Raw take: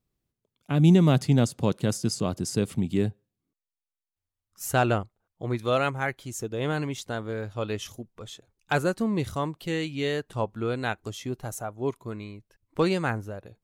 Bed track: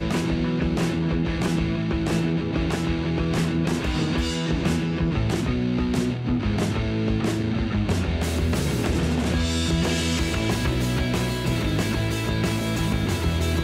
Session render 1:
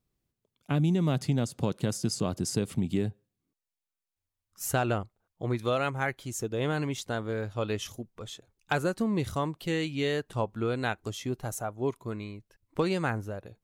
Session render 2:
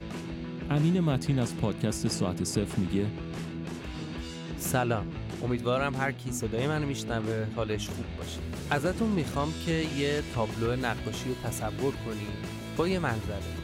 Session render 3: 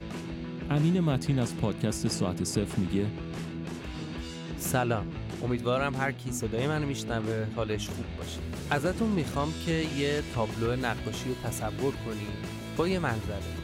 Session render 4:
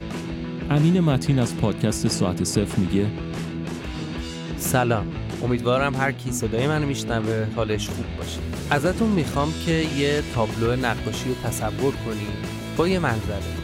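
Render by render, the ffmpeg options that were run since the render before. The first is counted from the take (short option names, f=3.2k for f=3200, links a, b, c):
-af "acompressor=threshold=-23dB:ratio=6"
-filter_complex "[1:a]volume=-13.5dB[a];[0:a][a]amix=inputs=2:normalize=0"
-af anull
-af "volume=7dB"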